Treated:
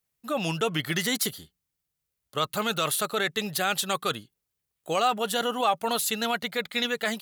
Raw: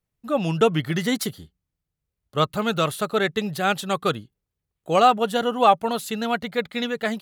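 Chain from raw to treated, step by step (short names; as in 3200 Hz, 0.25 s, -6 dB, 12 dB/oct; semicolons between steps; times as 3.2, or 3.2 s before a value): tilt +2.5 dB/oct; in parallel at +1.5 dB: negative-ratio compressor -25 dBFS, ratio -1; on the sum: gain -9 dB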